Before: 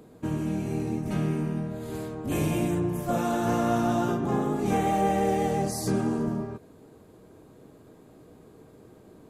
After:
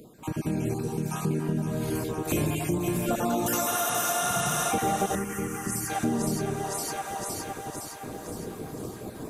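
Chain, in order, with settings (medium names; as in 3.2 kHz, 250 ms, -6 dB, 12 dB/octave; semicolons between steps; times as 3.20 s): random holes in the spectrogram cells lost 29%; 3.46–4.31 s: RIAA curve recording; level rider gain up to 13 dB; treble shelf 5.5 kHz +8 dB; on a send at -17.5 dB: reverberation, pre-delay 3 ms; on the sum: reverb removal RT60 0.57 s; 0.80–1.31 s: static phaser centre 420 Hz, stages 8; 3.74–4.69 s: spectral replace 210–11000 Hz before; two-band feedback delay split 660 Hz, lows 84 ms, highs 513 ms, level -5.5 dB; compression 3:1, threshold -31 dBFS, peak gain reduction 16.5 dB; 5.15–5.90 s: static phaser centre 1.6 kHz, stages 4; trim +2 dB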